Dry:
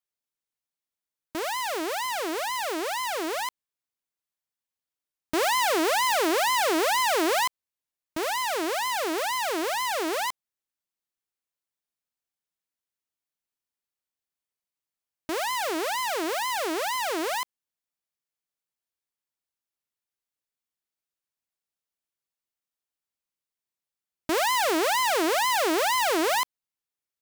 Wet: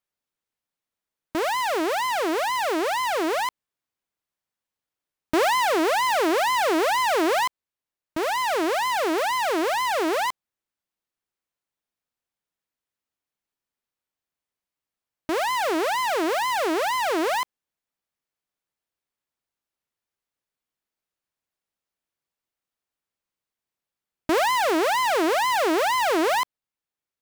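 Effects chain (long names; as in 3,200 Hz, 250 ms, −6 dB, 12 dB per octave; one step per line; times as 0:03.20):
high-shelf EQ 3,400 Hz −8 dB
in parallel at +1 dB: speech leveller
on the sum: level −2 dB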